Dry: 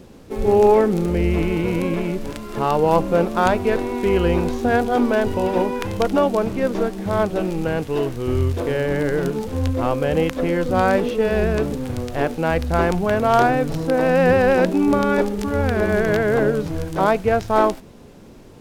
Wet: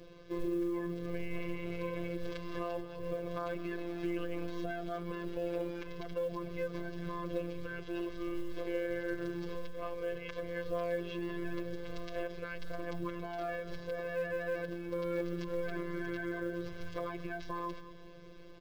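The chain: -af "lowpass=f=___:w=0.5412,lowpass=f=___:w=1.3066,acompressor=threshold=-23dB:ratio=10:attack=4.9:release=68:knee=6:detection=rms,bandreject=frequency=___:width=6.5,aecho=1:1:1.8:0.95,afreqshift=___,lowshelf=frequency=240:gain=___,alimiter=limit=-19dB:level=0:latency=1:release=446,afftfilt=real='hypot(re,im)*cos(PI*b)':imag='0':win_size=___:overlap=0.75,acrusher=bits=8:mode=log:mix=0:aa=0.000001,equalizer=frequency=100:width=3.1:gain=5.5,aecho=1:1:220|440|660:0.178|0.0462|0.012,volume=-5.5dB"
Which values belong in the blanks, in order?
5k, 5k, 940, -47, -4, 1024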